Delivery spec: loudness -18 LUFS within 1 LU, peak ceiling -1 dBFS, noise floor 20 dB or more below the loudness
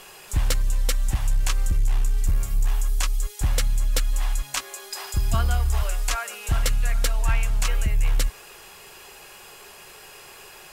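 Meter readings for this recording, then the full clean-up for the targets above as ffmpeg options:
loudness -26.0 LUFS; peak level -12.0 dBFS; loudness target -18.0 LUFS
-> -af "volume=2.51"

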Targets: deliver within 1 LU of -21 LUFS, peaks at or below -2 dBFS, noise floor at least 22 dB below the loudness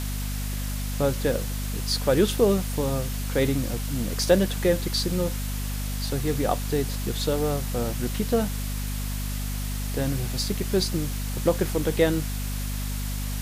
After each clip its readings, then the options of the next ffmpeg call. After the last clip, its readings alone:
hum 50 Hz; highest harmonic 250 Hz; hum level -27 dBFS; noise floor -29 dBFS; noise floor target -49 dBFS; loudness -26.5 LUFS; peak level -6.0 dBFS; loudness target -21.0 LUFS
-> -af "bandreject=f=50:t=h:w=6,bandreject=f=100:t=h:w=6,bandreject=f=150:t=h:w=6,bandreject=f=200:t=h:w=6,bandreject=f=250:t=h:w=6"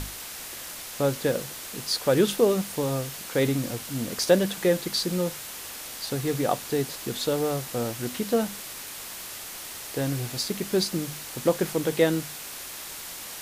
hum not found; noise floor -39 dBFS; noise floor target -50 dBFS
-> -af "afftdn=nr=11:nf=-39"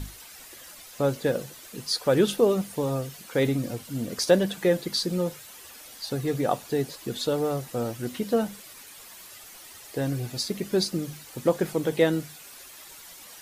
noise floor -47 dBFS; noise floor target -49 dBFS
-> -af "afftdn=nr=6:nf=-47"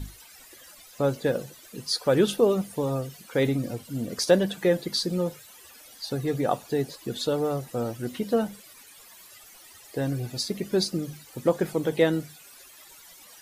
noise floor -50 dBFS; loudness -27.0 LUFS; peak level -7.0 dBFS; loudness target -21.0 LUFS
-> -af "volume=2,alimiter=limit=0.794:level=0:latency=1"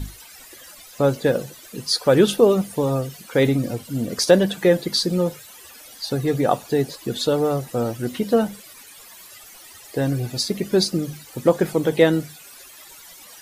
loudness -21.0 LUFS; peak level -2.0 dBFS; noise floor -44 dBFS

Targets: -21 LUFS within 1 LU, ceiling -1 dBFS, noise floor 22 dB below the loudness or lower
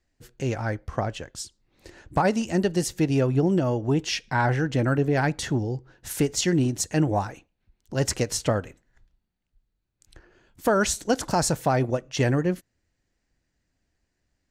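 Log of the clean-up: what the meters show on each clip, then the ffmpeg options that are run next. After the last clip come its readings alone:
loudness -25.0 LUFS; peak level -12.0 dBFS; loudness target -21.0 LUFS
-> -af "volume=1.58"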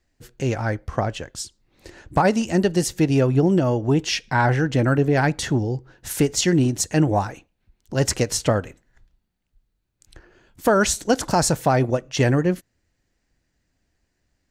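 loudness -21.0 LUFS; peak level -8.0 dBFS; noise floor -74 dBFS

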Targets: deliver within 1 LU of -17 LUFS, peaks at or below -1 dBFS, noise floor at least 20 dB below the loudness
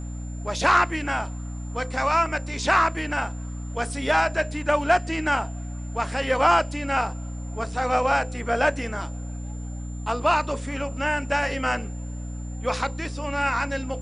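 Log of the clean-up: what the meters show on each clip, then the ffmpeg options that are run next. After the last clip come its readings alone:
hum 60 Hz; highest harmonic 300 Hz; hum level -31 dBFS; steady tone 7.2 kHz; tone level -48 dBFS; loudness -24.5 LUFS; peak level -6.5 dBFS; loudness target -17.0 LUFS
-> -af "bandreject=f=60:t=h:w=4,bandreject=f=120:t=h:w=4,bandreject=f=180:t=h:w=4,bandreject=f=240:t=h:w=4,bandreject=f=300:t=h:w=4"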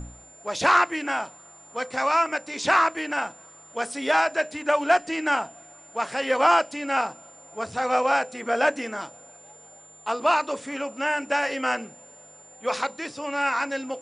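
hum not found; steady tone 7.2 kHz; tone level -48 dBFS
-> -af "bandreject=f=7200:w=30"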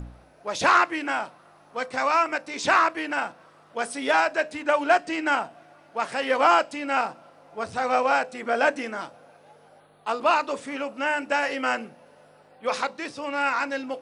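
steady tone not found; loudness -24.5 LUFS; peak level -7.0 dBFS; loudness target -17.0 LUFS
-> -af "volume=2.37,alimiter=limit=0.891:level=0:latency=1"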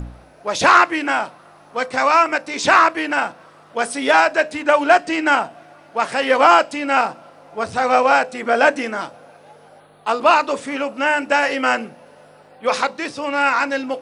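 loudness -17.5 LUFS; peak level -1.0 dBFS; noise floor -48 dBFS

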